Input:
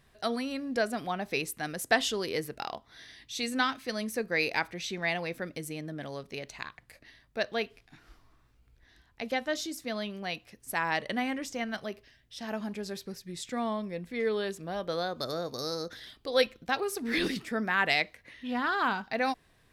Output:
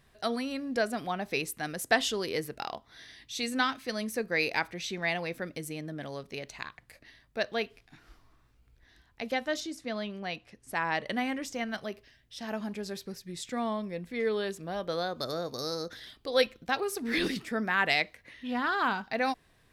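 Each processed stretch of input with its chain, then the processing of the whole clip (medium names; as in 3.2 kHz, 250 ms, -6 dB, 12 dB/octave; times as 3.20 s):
9.60–11.06 s: low-pass 11 kHz 24 dB/octave + treble shelf 4.7 kHz -7 dB
whole clip: none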